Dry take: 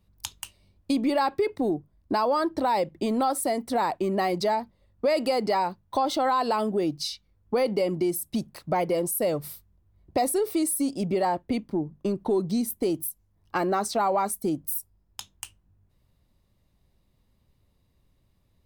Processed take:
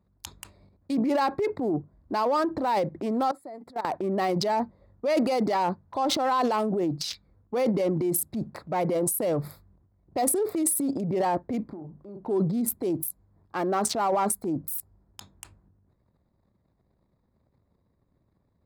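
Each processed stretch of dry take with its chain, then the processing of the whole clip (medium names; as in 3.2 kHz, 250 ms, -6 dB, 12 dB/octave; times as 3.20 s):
3.31–3.85 s: bass shelf 260 Hz -5 dB + level held to a coarse grid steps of 24 dB
11.63–12.25 s: dynamic bell 700 Hz, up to +6 dB, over -45 dBFS, Q 1.3 + compression 2:1, threshold -51 dBFS + doubling 39 ms -11 dB
whole clip: local Wiener filter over 15 samples; transient shaper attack -5 dB, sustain +10 dB; high-pass 98 Hz 6 dB/octave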